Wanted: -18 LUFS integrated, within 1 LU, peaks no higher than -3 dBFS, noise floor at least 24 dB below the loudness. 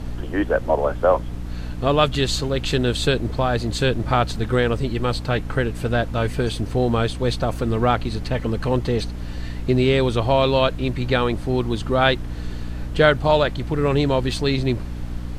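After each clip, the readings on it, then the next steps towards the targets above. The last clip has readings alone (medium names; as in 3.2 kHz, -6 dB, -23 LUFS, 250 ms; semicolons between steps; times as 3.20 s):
hum 60 Hz; highest harmonic 300 Hz; hum level -29 dBFS; noise floor -30 dBFS; noise floor target -46 dBFS; loudness -21.5 LUFS; peak level -3.0 dBFS; loudness target -18.0 LUFS
-> hum notches 60/120/180/240/300 Hz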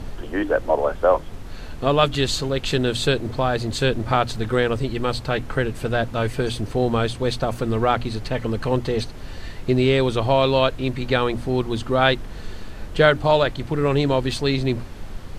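hum not found; noise floor -35 dBFS; noise floor target -46 dBFS
-> noise print and reduce 11 dB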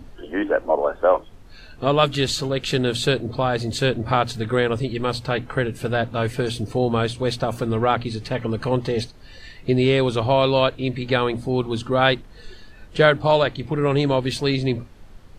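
noise floor -44 dBFS; noise floor target -46 dBFS
-> noise print and reduce 6 dB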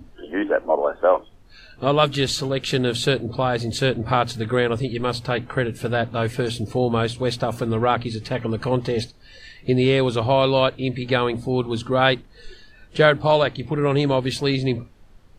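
noise floor -48 dBFS; loudness -22.0 LUFS; peak level -3.0 dBFS; loudness target -18.0 LUFS
-> trim +4 dB; peak limiter -3 dBFS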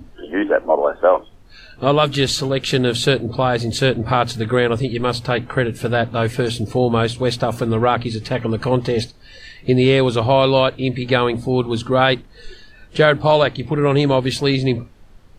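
loudness -18.0 LUFS; peak level -3.0 dBFS; noise floor -44 dBFS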